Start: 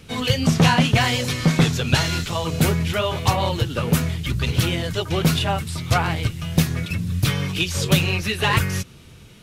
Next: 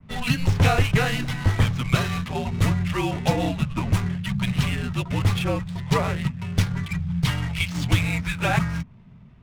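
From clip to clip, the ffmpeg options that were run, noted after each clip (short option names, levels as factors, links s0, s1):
-af "adynamicequalizer=threshold=0.0112:dfrequency=4800:dqfactor=0.89:tfrequency=4800:tqfactor=0.89:attack=5:release=100:ratio=0.375:range=3:mode=cutabove:tftype=bell,adynamicsmooth=sensitivity=7.5:basefreq=990,afreqshift=-260,volume=0.794"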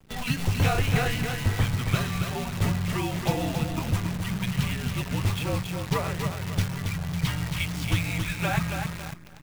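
-filter_complex "[0:a]asplit=2[s0][s1];[s1]aecho=0:1:275|550|825|1100:0.501|0.18|0.065|0.0234[s2];[s0][s2]amix=inputs=2:normalize=0,acrusher=bits=6:dc=4:mix=0:aa=0.000001,volume=0.562"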